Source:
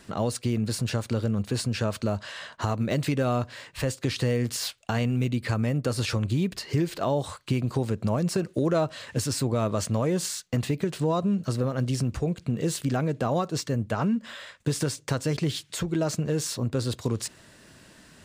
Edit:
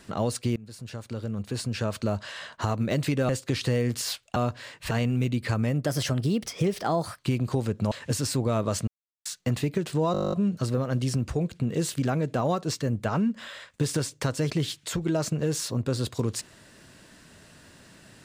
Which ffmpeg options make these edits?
-filter_complex "[0:a]asplit=20[a][b][c][d][e][f][g][h][i][j][k][l][m][n][o][p][q][r][s][t];[a]atrim=end=0.56,asetpts=PTS-STARTPTS,afade=t=out:st=0.556:d=0.004:c=hsin:silence=0.0891251[u];[b]atrim=start=0.56:end=3.292,asetpts=PTS-STARTPTS,afade=t=in:d=1.56:silence=0.0891251[v];[c]atrim=start=3.838:end=4.912[w];[d]atrim=start=3.288:end=3.842[x];[e]atrim=start=4.908:end=5.864[y];[f]atrim=start=5.86:end=7.41,asetpts=PTS-STARTPTS,asetrate=51597,aresample=44100,atrim=end_sample=58423,asetpts=PTS-STARTPTS[z];[g]atrim=start=7.406:end=8.142[aa];[h]atrim=start=8.978:end=9.94,asetpts=PTS-STARTPTS,afade=t=out:st=0.958:d=0.004:c=hsin[ab];[i]atrim=start=9.94:end=10.32,asetpts=PTS-STARTPTS,volume=0[ac];[j]atrim=start=10.32:end=11.212,asetpts=PTS-STARTPTS,afade=t=in:d=0.004:c=hsin[ad];[k]atrim=start=11.188:end=11.212[ae];[l]atrim=start=11.188:end=11.212[af];[m]atrim=start=11.188:end=11.212[ag];[n]atrim=start=11.188:end=11.212[ah];[o]atrim=start=11.188:end=11.212[ai];[p]atrim=start=11.188:end=11.212[aj];[q]atrim=start=11.188:end=11.212[ak];[r]atrim=start=11.188:end=11.212[al];[s]atrim=start=11.188:end=11.212[am];[t]atrim=start=11.188[an];[u][v]concat=n=2:v=0:a=1[ao];[ao][w]acrossfade=d=0.004:c1=hsin:c2=hsin[ap];[ap][x]acrossfade=d=0.004:c1=hsin:c2=hsin[aq];[aq][y]acrossfade=d=0.004:c1=hsin:c2=hsin[ar];[ar][z]acrossfade=d=0.004:c1=hsin:c2=hsin[as];[as][aa]acrossfade=d=0.004:c1=hsin:c2=hsin[at];[ab][ac][ad]concat=n=3:v=0:a=1[au];[at][au]acrossfade=d=0.004:c1=hsin:c2=hsin[av];[av][ae]acrossfade=d=0.004:c1=hsin:c2=hsin[aw];[aw][af]acrossfade=d=0.004:c1=hsin:c2=hsin[ax];[ax][ag]acrossfade=d=0.004:c1=hsin:c2=hsin[ay];[ay][ah]acrossfade=d=0.004:c1=hsin:c2=hsin[az];[az][ai]acrossfade=d=0.004:c1=hsin:c2=hsin[ba];[ba][aj]acrossfade=d=0.004:c1=hsin:c2=hsin[bb];[bb][ak]acrossfade=d=0.004:c1=hsin:c2=hsin[bc];[bc][al]acrossfade=d=0.004:c1=hsin:c2=hsin[bd];[bd][am]acrossfade=d=0.004:c1=hsin:c2=hsin[be];[be][an]acrossfade=d=0.004:c1=hsin:c2=hsin"

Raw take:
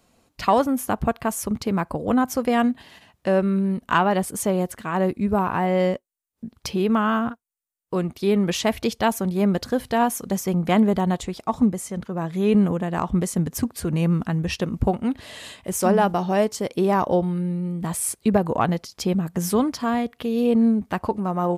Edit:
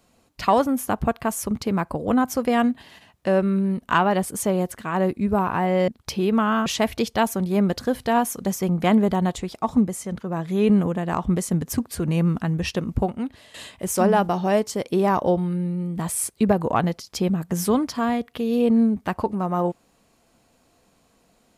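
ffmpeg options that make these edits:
-filter_complex "[0:a]asplit=4[a][b][c][d];[a]atrim=end=5.882[e];[b]atrim=start=6.448:end=7.232[f];[c]atrim=start=8.508:end=15.39,asetpts=PTS-STARTPTS,afade=t=out:st=5.962:d=0.92:c=qsin:silence=0.211349[g];[d]atrim=start=15.39,asetpts=PTS-STARTPTS,afade=t=in:d=0.004:c=hsin:silence=0.211349[h];[e][f]acrossfade=d=0.004:c1=hsin:c2=hsin[i];[g][h]concat=n=2:v=0:a=1[j];[i][j]acrossfade=d=0.004:c1=hsin:c2=hsin"

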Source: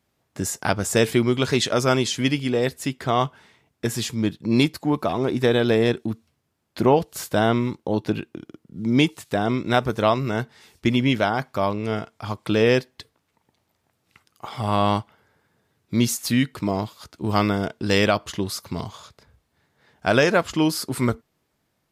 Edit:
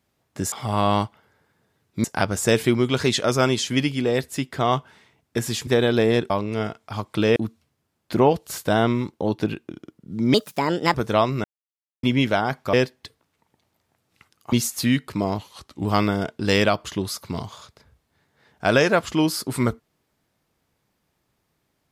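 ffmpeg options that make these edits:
-filter_complex "[0:a]asplit=14[a][b][c][d][e][f][g][h][i][j][k][l][m][n];[a]atrim=end=0.522[o];[b]atrim=start=14.468:end=15.992[p];[c]atrim=start=0.518:end=4.152[q];[d]atrim=start=5.388:end=6.022[r];[e]atrim=start=11.618:end=12.682[s];[f]atrim=start=6.018:end=9.004[t];[g]atrim=start=9:end=9.83,asetpts=PTS-STARTPTS,asetrate=60858,aresample=44100[u];[h]atrim=start=9.826:end=10.33,asetpts=PTS-STARTPTS,afade=t=out:st=0.5:d=0.004:c=hsin[v];[i]atrim=start=10.33:end=10.92,asetpts=PTS-STARTPTS,volume=0[w];[j]atrim=start=10.92:end=11.622,asetpts=PTS-STARTPTS,afade=t=in:d=0.004:c=hsin[x];[k]atrim=start=12.678:end=14.472[y];[l]atrim=start=15.988:end=16.854[z];[m]atrim=start=16.85:end=17.27,asetpts=PTS-STARTPTS,asetrate=39249,aresample=44100,atrim=end_sample=20811,asetpts=PTS-STARTPTS[aa];[n]atrim=start=17.266[ab];[o][p]acrossfade=d=0.004:c1=hsin:c2=hsin[ac];[ac][q]acrossfade=d=0.004:c1=hsin:c2=hsin[ad];[ad][r]acrossfade=d=0.004:c1=hsin:c2=hsin[ae];[ae][s]acrossfade=d=0.004:c1=hsin:c2=hsin[af];[af][t]acrossfade=d=0.004:c1=hsin:c2=hsin[ag];[ag][u]acrossfade=d=0.004:c1=hsin:c2=hsin[ah];[v][w][x]concat=n=3:v=0:a=1[ai];[ah][ai]acrossfade=d=0.004:c1=hsin:c2=hsin[aj];[aj][y]acrossfade=d=0.004:c1=hsin:c2=hsin[ak];[ak][z]acrossfade=d=0.004:c1=hsin:c2=hsin[al];[al][aa]acrossfade=d=0.004:c1=hsin:c2=hsin[am];[am][ab]acrossfade=d=0.004:c1=hsin:c2=hsin"

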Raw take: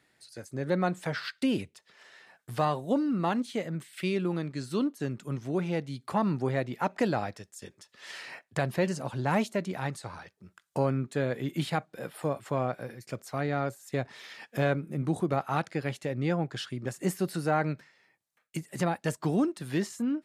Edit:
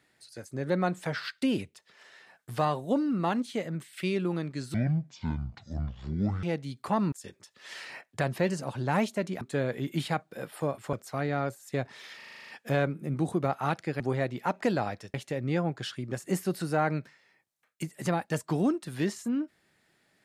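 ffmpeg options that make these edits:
-filter_complex "[0:a]asplit=16[a][b][c][d][e][f][g][h][i][j][k][l][m][n][o][p];[a]atrim=end=4.744[q];[b]atrim=start=4.74:end=5.67,asetpts=PTS-STARTPTS,asetrate=24255,aresample=44100,atrim=end_sample=74569,asetpts=PTS-STARTPTS[r];[c]atrim=start=5.666:end=6.362[s];[d]atrim=start=7.498:end=9.792[t];[e]atrim=start=11.028:end=12.552[u];[f]atrim=start=13.128:end=14.402[v];[g]atrim=start=14.358:end=14.402[w];[h]atrim=start=14.358:end=14.402[x];[i]atrim=start=14.358:end=14.402[y];[j]atrim=start=14.358:end=14.402[z];[k]atrim=start=14.358:end=14.402[aa];[l]atrim=start=14.358:end=14.402[ab];[m]atrim=start=14.358:end=14.402[ac];[n]atrim=start=14.358:end=15.882[ad];[o]atrim=start=6.358:end=7.502[ae];[p]atrim=start=15.878[af];[q][r]acrossfade=d=0.004:c1=hsin:c2=hsin[ag];[ag][s]acrossfade=d=0.004:c1=hsin:c2=hsin[ah];[ah][t]acrossfade=d=0.004:c1=hsin:c2=hsin[ai];[ai][u]acrossfade=d=0.004:c1=hsin:c2=hsin[aj];[aj][v]acrossfade=d=0.004:c1=hsin:c2=hsin[ak];[ak][w]acrossfade=d=0.004:c1=hsin:c2=hsin[al];[al][x]acrossfade=d=0.004:c1=hsin:c2=hsin[am];[am][y]acrossfade=d=0.004:c1=hsin:c2=hsin[an];[an][z]acrossfade=d=0.004:c1=hsin:c2=hsin[ao];[ao][aa]acrossfade=d=0.004:c1=hsin:c2=hsin[ap];[ap][ab]acrossfade=d=0.004:c1=hsin:c2=hsin[aq];[aq][ac]acrossfade=d=0.004:c1=hsin:c2=hsin[ar];[ar][ad]acrossfade=d=0.004:c1=hsin:c2=hsin[as];[as][ae]acrossfade=d=0.004:c1=hsin:c2=hsin[at];[at][af]acrossfade=d=0.004:c1=hsin:c2=hsin"

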